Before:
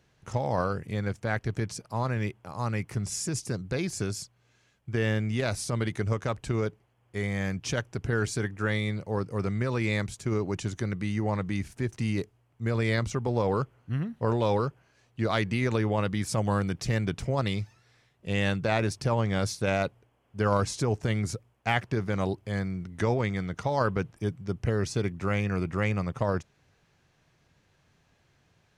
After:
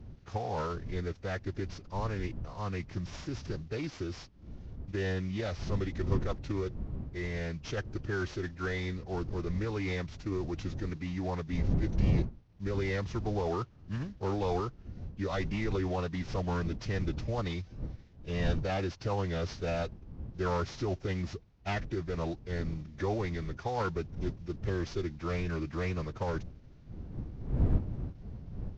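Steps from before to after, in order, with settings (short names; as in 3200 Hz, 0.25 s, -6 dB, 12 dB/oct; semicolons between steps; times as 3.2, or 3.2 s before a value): CVSD 32 kbps; wind noise 120 Hz -32 dBFS; formant-preserving pitch shift -2.5 st; gain -5.5 dB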